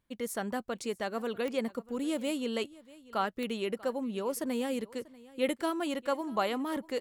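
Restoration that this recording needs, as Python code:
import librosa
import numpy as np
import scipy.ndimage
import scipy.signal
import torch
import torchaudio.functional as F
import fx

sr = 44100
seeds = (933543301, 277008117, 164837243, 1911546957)

y = fx.fix_declick_ar(x, sr, threshold=10.0)
y = fx.fix_echo_inverse(y, sr, delay_ms=640, level_db=-21.0)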